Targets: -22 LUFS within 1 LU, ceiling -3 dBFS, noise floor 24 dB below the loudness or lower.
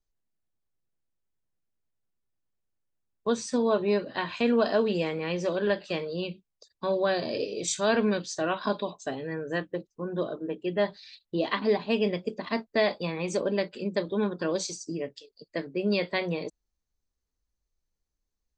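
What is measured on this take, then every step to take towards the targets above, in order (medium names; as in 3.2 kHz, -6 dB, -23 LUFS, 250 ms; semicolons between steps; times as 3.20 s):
loudness -29.0 LUFS; peak level -12.5 dBFS; loudness target -22.0 LUFS
-> trim +7 dB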